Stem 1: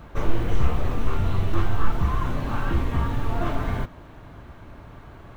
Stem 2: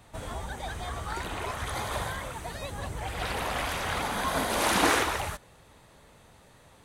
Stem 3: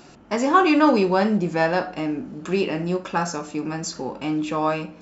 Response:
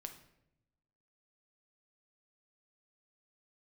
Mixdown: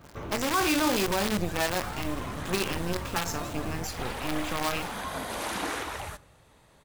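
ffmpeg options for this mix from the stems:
-filter_complex "[0:a]highpass=70,volume=-7dB[a];[1:a]adelay=800,volume=-5.5dB,asplit=2[b][c];[c]volume=-7dB[d];[2:a]acrusher=bits=4:dc=4:mix=0:aa=0.000001,adynamicequalizer=threshold=0.02:dfrequency=1600:dqfactor=0.7:tfrequency=1600:tqfactor=0.7:attack=5:release=100:ratio=0.375:range=2.5:mode=boostabove:tftype=highshelf,volume=-3.5dB[e];[a][b]amix=inputs=2:normalize=0,acompressor=threshold=-34dB:ratio=4,volume=0dB[f];[3:a]atrim=start_sample=2205[g];[d][g]afir=irnorm=-1:irlink=0[h];[e][f][h]amix=inputs=3:normalize=0,alimiter=limit=-16.5dB:level=0:latency=1:release=20"

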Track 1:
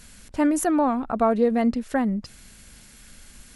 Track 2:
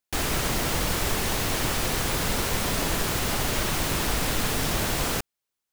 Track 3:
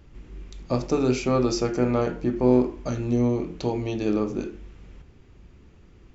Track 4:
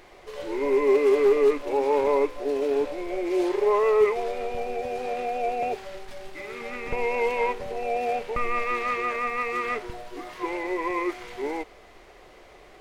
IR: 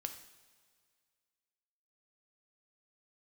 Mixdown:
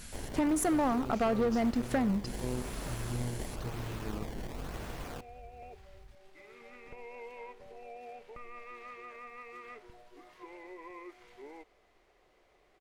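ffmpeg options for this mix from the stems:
-filter_complex "[0:a]asoftclip=type=tanh:threshold=-20.5dB,volume=2dB,asplit=2[a][b];[b]volume=-7dB[c];[1:a]aemphasis=mode=reproduction:type=75kf,acrusher=samples=20:mix=1:aa=0.000001:lfo=1:lforange=32:lforate=0.97,volume=-10.5dB[d];[2:a]asubboost=boost=7:cutoff=120,acrusher=bits=8:mix=0:aa=0.000001,volume=-13.5dB,asplit=2[e][f];[3:a]acompressor=threshold=-29dB:ratio=2,volume=-13dB[g];[f]apad=whole_len=568938[h];[g][h]sidechaincompress=threshold=-47dB:ratio=8:attack=5.3:release=436[i];[4:a]atrim=start_sample=2205[j];[c][j]afir=irnorm=-1:irlink=0[k];[a][d][e][i][k]amix=inputs=5:normalize=0,aeval=exprs='0.251*(cos(1*acos(clip(val(0)/0.251,-1,1)))-cos(1*PI/2))+0.0141*(cos(7*acos(clip(val(0)/0.251,-1,1)))-cos(7*PI/2))':c=same,acompressor=threshold=-29dB:ratio=3"

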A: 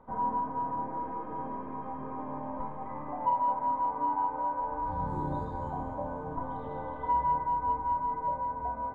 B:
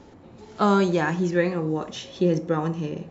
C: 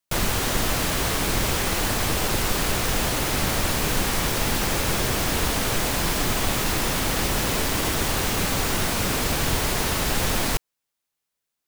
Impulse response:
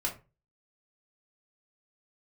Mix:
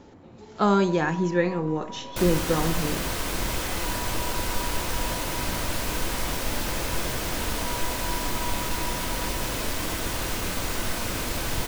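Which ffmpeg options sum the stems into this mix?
-filter_complex "[0:a]alimiter=level_in=5dB:limit=-24dB:level=0:latency=1,volume=-5dB,asoftclip=type=tanh:threshold=-34dB,adelay=550,volume=-6dB,asplit=2[a][b];[b]volume=-8dB[c];[1:a]volume=-1dB[d];[2:a]adelay=2050,volume=-8.5dB,asplit=2[e][f];[f]volume=-8.5dB[g];[3:a]atrim=start_sample=2205[h];[c][g]amix=inputs=2:normalize=0[i];[i][h]afir=irnorm=-1:irlink=0[j];[a][d][e][j]amix=inputs=4:normalize=0"

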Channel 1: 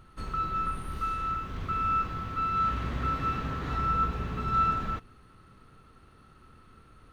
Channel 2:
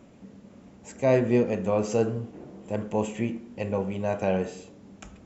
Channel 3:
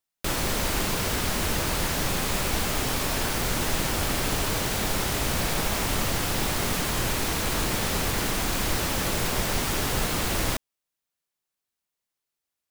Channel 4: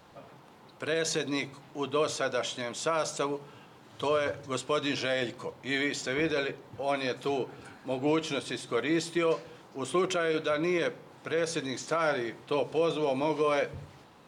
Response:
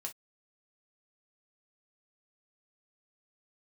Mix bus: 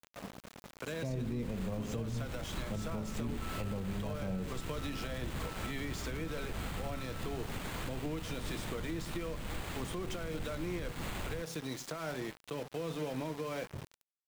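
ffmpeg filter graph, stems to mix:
-filter_complex "[0:a]acompressor=threshold=-39dB:ratio=6,adelay=2400,volume=1.5dB[a];[1:a]volume=1dB[b];[2:a]acrusher=samples=8:mix=1:aa=0.000001,adelay=850,volume=-9dB[c];[3:a]equalizer=f=73:t=o:w=0.53:g=-6,acontrast=39,volume=-4dB[d];[a][b][c][d]amix=inputs=4:normalize=0,acrossover=split=220[e][f];[f]acompressor=threshold=-39dB:ratio=4[g];[e][g]amix=inputs=2:normalize=0,aeval=exprs='val(0)*gte(abs(val(0)),0.00841)':c=same,alimiter=level_in=4.5dB:limit=-24dB:level=0:latency=1:release=179,volume=-4.5dB"

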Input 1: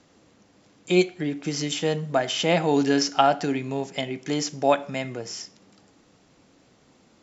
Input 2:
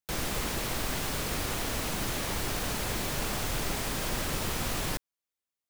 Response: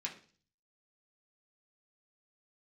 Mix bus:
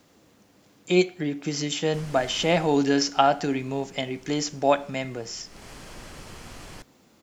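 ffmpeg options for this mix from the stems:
-filter_complex "[0:a]acrusher=bits=10:mix=0:aa=0.000001,volume=-0.5dB[a];[1:a]lowpass=8.5k,bandreject=f=3.7k:w=12,adelay=1850,volume=2dB,afade=t=out:st=2.46:d=0.33:silence=0.251189,afade=t=in:st=5.45:d=0.24:silence=0.237137[b];[a][b]amix=inputs=2:normalize=0"

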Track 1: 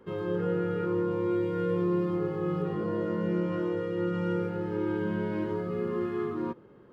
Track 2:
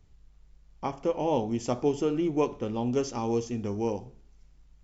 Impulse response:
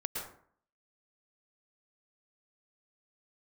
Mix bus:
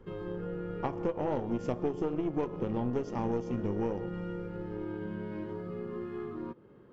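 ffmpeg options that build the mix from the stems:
-filter_complex "[0:a]equalizer=f=940:w=0.44:g=-3,acompressor=threshold=-40dB:ratio=2,volume=2.5dB[a];[1:a]highshelf=f=2.6k:g=-12,volume=3dB,asplit=2[b][c];[c]volume=-18.5dB[d];[2:a]atrim=start_sample=2205[e];[d][e]afir=irnorm=-1:irlink=0[f];[a][b][f]amix=inputs=3:normalize=0,highshelf=f=6.5k:g=-9,aeval=exprs='0.299*(cos(1*acos(clip(val(0)/0.299,-1,1)))-cos(1*PI/2))+0.0299*(cos(4*acos(clip(val(0)/0.299,-1,1)))-cos(4*PI/2))+0.0119*(cos(7*acos(clip(val(0)/0.299,-1,1)))-cos(7*PI/2))':c=same,acompressor=threshold=-28dB:ratio=6"

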